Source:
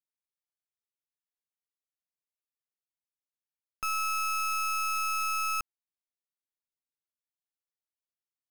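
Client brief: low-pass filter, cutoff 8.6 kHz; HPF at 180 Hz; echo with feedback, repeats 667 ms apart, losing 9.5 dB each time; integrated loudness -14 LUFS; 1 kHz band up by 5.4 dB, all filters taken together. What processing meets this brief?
high-pass 180 Hz; low-pass 8.6 kHz; peaking EQ 1 kHz +8.5 dB; feedback delay 667 ms, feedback 33%, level -9.5 dB; trim +11.5 dB

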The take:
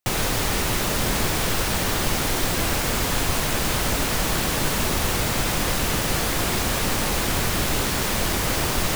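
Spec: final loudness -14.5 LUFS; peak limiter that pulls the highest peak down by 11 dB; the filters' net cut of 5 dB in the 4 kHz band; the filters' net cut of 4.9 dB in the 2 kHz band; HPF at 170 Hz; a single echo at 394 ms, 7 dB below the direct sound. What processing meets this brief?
high-pass 170 Hz; peaking EQ 2 kHz -5 dB; peaking EQ 4 kHz -5 dB; peak limiter -23.5 dBFS; delay 394 ms -7 dB; trim +16 dB

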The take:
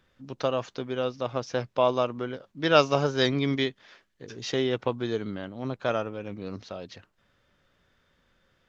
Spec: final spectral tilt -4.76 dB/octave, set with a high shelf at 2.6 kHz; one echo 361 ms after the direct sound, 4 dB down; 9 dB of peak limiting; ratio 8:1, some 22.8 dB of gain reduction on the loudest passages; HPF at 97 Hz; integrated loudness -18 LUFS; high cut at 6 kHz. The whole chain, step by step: high-pass 97 Hz; low-pass 6 kHz; treble shelf 2.6 kHz -4 dB; compression 8:1, threshold -38 dBFS; peak limiter -32.5 dBFS; delay 361 ms -4 dB; trim +25.5 dB

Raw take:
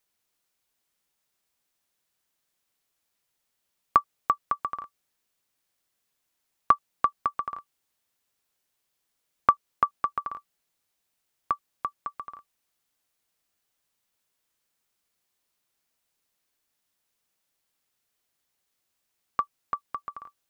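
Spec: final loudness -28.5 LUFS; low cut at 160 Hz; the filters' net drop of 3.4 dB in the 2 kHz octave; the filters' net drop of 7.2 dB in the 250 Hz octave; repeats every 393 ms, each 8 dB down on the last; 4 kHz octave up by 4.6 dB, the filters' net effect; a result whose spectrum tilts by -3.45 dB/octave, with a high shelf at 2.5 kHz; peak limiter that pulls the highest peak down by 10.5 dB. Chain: high-pass 160 Hz; peaking EQ 250 Hz -9 dB; peaking EQ 2 kHz -7.5 dB; treble shelf 2.5 kHz +4 dB; peaking EQ 4 kHz +5.5 dB; peak limiter -16.5 dBFS; feedback delay 393 ms, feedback 40%, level -8 dB; trim +8.5 dB

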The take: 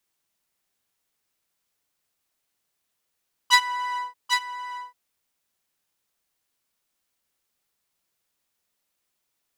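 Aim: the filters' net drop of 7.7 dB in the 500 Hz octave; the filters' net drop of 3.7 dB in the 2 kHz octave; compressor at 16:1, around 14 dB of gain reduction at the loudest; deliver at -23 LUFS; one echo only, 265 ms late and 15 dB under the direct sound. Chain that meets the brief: peaking EQ 500 Hz -8 dB; peaking EQ 2 kHz -3.5 dB; compression 16:1, threshold -27 dBFS; delay 265 ms -15 dB; trim +11.5 dB

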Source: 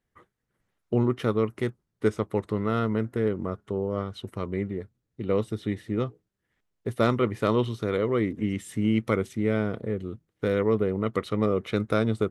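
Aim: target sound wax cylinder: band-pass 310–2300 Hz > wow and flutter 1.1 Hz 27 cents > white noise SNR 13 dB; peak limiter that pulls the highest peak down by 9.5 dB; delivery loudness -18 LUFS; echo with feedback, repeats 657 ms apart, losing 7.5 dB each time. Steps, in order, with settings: peak limiter -18.5 dBFS; band-pass 310–2300 Hz; feedback delay 657 ms, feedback 42%, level -7.5 dB; wow and flutter 1.1 Hz 27 cents; white noise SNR 13 dB; trim +15 dB

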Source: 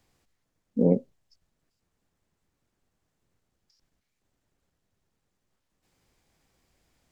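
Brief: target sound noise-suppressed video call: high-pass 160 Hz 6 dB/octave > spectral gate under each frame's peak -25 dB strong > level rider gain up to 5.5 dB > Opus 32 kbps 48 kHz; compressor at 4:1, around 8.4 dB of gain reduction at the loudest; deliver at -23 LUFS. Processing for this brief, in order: compression 4:1, threshold -26 dBFS; high-pass 160 Hz 6 dB/octave; spectral gate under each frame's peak -25 dB strong; level rider gain up to 5.5 dB; trim +12 dB; Opus 32 kbps 48 kHz

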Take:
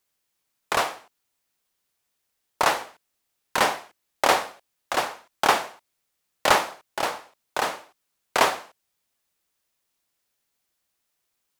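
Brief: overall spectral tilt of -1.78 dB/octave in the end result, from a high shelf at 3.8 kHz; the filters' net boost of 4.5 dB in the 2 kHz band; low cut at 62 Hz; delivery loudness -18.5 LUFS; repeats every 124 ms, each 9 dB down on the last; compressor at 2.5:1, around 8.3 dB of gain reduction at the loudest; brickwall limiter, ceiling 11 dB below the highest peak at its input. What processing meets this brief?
high-pass 62 Hz; peaking EQ 2 kHz +4.5 dB; treble shelf 3.8 kHz +5 dB; compression 2.5:1, threshold -24 dBFS; peak limiter -17 dBFS; feedback delay 124 ms, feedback 35%, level -9 dB; trim +14 dB

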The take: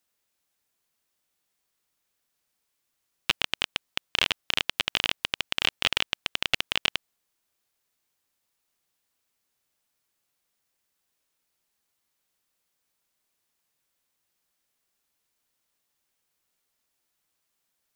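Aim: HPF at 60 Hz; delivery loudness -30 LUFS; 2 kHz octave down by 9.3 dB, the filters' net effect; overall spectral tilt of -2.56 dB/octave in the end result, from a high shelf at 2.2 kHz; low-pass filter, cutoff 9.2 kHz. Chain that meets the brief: high-pass 60 Hz; low-pass 9.2 kHz; peaking EQ 2 kHz -6.5 dB; treble shelf 2.2 kHz -9 dB; trim +5.5 dB

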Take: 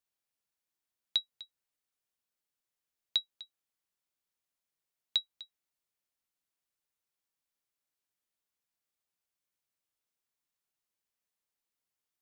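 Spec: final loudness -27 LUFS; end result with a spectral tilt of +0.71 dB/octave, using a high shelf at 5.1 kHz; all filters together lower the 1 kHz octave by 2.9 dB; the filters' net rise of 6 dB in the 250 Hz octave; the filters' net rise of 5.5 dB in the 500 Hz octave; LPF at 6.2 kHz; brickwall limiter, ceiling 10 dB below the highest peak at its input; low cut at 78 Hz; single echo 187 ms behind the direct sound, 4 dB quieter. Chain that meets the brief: high-pass 78 Hz; low-pass 6.2 kHz; peaking EQ 250 Hz +6 dB; peaking EQ 500 Hz +7 dB; peaking EQ 1 kHz -6.5 dB; treble shelf 5.1 kHz +5 dB; peak limiter -25.5 dBFS; delay 187 ms -4 dB; trim +14 dB

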